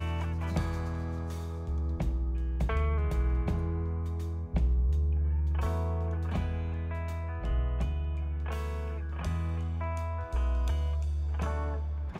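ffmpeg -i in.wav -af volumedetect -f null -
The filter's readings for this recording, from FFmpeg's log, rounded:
mean_volume: -30.1 dB
max_volume: -17.6 dB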